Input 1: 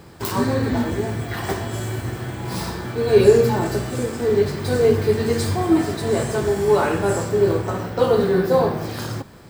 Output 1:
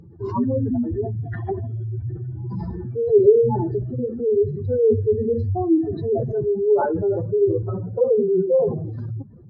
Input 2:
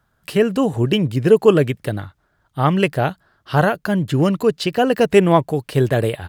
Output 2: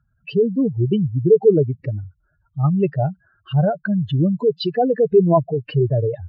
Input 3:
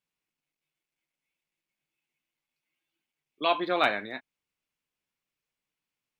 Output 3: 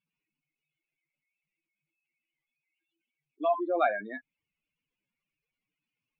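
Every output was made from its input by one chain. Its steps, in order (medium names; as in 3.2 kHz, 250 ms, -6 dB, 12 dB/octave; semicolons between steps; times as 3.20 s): spectral contrast enhancement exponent 3.1; MP3 40 kbps 16 kHz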